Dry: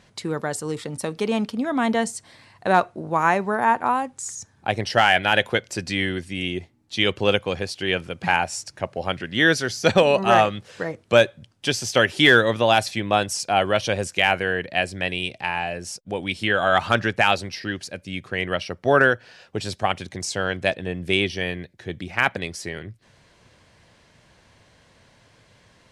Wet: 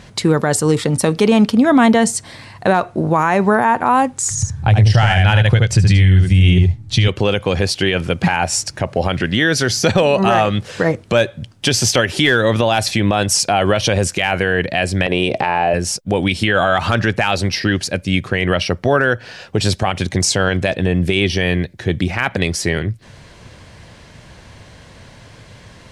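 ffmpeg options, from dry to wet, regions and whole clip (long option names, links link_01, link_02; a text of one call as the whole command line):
ffmpeg -i in.wav -filter_complex "[0:a]asettb=1/sr,asplit=3[link_01][link_02][link_03];[link_01]atrim=end=4.304[link_04];[link_02]atrim=start=4.3:end=7.08,asetpts=PTS-STARTPTS,afade=type=in:duration=0.004:curve=qsin,afade=type=out:start_time=2.776:duration=0.004:curve=qsin,lowpass=frequency=11000:width=0.5412,lowpass=frequency=11000:width=1.3066,lowshelf=frequency=180:width_type=q:width=1.5:gain=14,aecho=1:1:74:0.531,atrim=end_sample=122598[link_05];[link_03]atrim=start=7.076[link_06];[link_04][link_05]acrossfade=duration=0.004:curve1=hsin:curve2=qsin[link_07];[link_07][link_06]acrossfade=duration=0.004:curve1=qsin:curve2=hsin,asettb=1/sr,asplit=3[link_08][link_09][link_10];[link_08]atrim=end=15.064[link_11];[link_09]atrim=start=15.06:end=15.74,asetpts=PTS-STARTPTS,afade=type=in:duration=0.004:curve=qsin,afade=type=out:start_time=0.676:duration=0.004:curve=qsin,equalizer=frequency=530:width_type=o:width=2.8:gain=15,acompressor=threshold=-25dB:ratio=6:attack=3.2:release=140:knee=1:detection=peak[link_12];[link_10]atrim=start=15.736[link_13];[link_11][link_12]acrossfade=duration=0.004:curve1=hsin:curve2=qsin[link_14];[link_14][link_13]acrossfade=duration=0.004:curve1=qsin:curve2=hsin,lowshelf=frequency=170:gain=7,acompressor=threshold=-19dB:ratio=3,alimiter=level_in=15.5dB:limit=-1dB:release=50:level=0:latency=1,volume=-3dB" out.wav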